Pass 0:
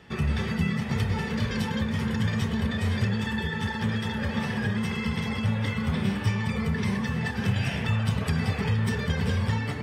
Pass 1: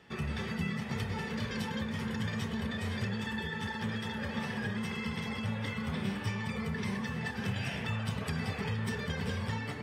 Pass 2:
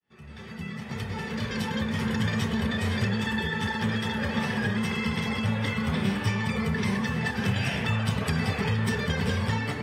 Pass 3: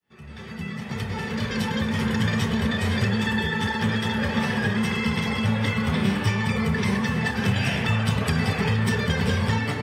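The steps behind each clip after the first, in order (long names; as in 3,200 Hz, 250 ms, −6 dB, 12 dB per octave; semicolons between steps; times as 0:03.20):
low-shelf EQ 120 Hz −8.5 dB; level −5.5 dB
fade in at the beginning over 2.09 s; level +8 dB
single-tap delay 231 ms −14 dB; level +3.5 dB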